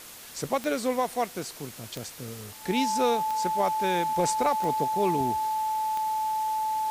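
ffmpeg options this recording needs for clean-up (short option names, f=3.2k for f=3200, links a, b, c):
-af "adeclick=t=4,bandreject=f=870:w=30,afftdn=nr=28:nf=-45"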